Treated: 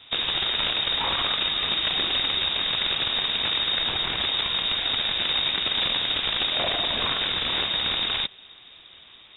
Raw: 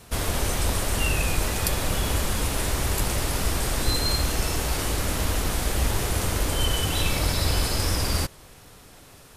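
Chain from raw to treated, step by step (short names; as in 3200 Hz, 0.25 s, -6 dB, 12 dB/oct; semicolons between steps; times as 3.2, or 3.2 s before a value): wrapped overs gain 18 dB; inverted band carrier 3700 Hz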